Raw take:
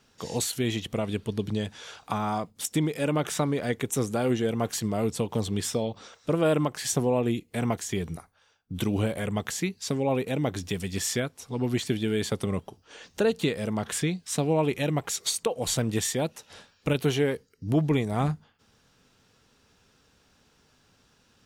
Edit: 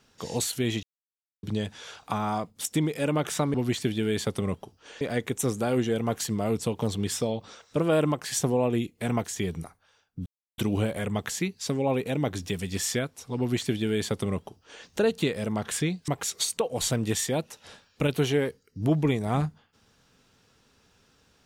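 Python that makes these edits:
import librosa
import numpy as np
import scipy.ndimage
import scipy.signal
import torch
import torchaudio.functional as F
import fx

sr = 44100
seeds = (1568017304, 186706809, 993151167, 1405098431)

y = fx.edit(x, sr, fx.silence(start_s=0.83, length_s=0.6),
    fx.insert_silence(at_s=8.79, length_s=0.32),
    fx.duplicate(start_s=11.59, length_s=1.47, to_s=3.54),
    fx.cut(start_s=14.29, length_s=0.65), tone=tone)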